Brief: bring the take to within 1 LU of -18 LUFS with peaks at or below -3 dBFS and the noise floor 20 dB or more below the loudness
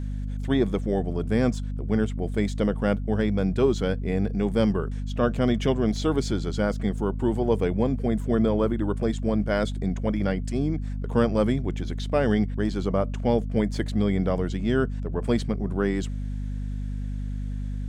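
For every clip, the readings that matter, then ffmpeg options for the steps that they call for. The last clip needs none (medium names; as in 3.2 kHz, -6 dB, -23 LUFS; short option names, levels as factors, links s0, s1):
hum 50 Hz; highest harmonic 250 Hz; hum level -27 dBFS; loudness -26.0 LUFS; peak level -8.5 dBFS; loudness target -18.0 LUFS
-> -af "bandreject=f=50:t=h:w=6,bandreject=f=100:t=h:w=6,bandreject=f=150:t=h:w=6,bandreject=f=200:t=h:w=6,bandreject=f=250:t=h:w=6"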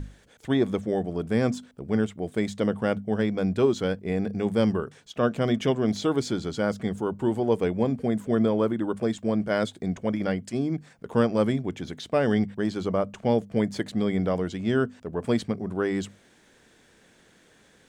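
hum not found; loudness -26.5 LUFS; peak level -10.0 dBFS; loudness target -18.0 LUFS
-> -af "volume=2.66,alimiter=limit=0.708:level=0:latency=1"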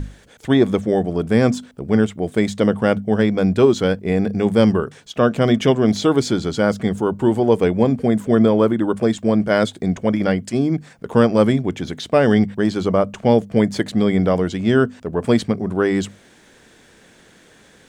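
loudness -18.0 LUFS; peak level -3.0 dBFS; noise floor -50 dBFS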